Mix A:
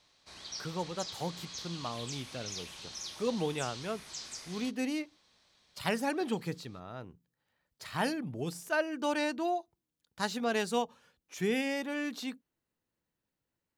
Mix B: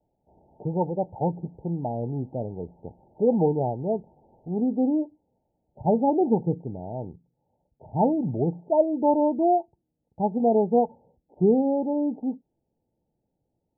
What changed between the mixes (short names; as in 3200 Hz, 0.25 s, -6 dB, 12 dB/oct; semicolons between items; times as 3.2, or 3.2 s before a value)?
speech +12.0 dB; master: add Chebyshev low-pass 900 Hz, order 10